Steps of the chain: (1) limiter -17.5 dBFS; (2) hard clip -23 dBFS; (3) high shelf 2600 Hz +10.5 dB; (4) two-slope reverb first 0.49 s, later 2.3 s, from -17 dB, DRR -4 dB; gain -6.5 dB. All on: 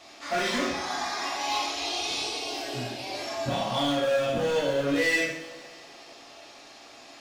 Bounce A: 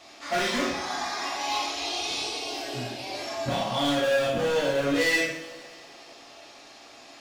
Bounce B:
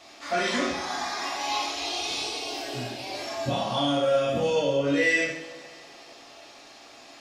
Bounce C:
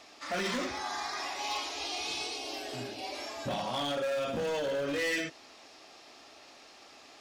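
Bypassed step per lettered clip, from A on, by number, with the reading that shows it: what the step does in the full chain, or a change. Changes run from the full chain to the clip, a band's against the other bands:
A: 1, momentary loudness spread change +1 LU; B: 2, distortion -14 dB; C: 4, loudness change -6.0 LU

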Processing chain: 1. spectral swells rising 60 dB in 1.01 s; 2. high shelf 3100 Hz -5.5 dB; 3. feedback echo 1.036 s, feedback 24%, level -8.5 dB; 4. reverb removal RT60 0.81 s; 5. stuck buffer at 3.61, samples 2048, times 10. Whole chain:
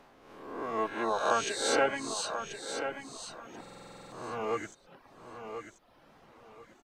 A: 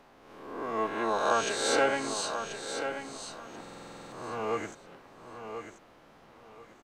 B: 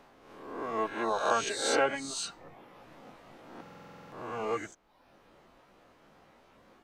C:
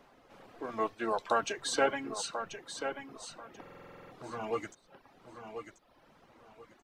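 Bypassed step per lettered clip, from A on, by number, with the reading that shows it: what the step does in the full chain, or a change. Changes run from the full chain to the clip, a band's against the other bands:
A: 4, loudness change +1.5 LU; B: 3, momentary loudness spread change +2 LU; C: 1, loudness change -2.5 LU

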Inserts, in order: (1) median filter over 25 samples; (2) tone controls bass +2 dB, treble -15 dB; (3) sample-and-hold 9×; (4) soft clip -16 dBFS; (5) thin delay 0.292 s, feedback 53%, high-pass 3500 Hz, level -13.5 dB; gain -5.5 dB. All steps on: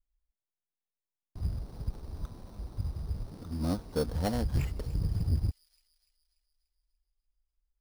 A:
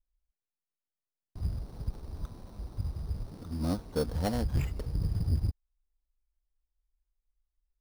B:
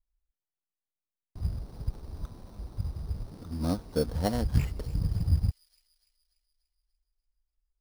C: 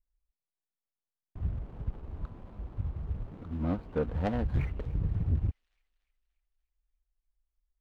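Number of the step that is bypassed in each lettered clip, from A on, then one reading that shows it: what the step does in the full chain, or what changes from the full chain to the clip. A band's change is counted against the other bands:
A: 5, echo-to-direct -23.0 dB to none; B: 4, distortion -13 dB; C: 3, distortion -17 dB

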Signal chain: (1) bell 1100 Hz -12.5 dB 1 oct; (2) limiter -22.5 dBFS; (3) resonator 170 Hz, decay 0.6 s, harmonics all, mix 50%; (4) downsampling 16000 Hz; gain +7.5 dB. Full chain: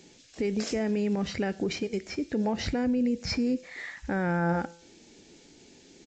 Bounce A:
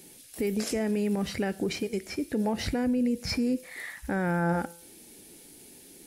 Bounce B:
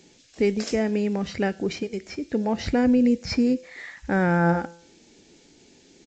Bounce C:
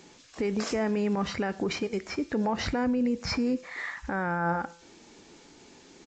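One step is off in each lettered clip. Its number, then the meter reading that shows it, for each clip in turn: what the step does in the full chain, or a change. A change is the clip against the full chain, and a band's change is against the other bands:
4, momentary loudness spread change +15 LU; 2, mean gain reduction 2.0 dB; 1, 1 kHz band +3.5 dB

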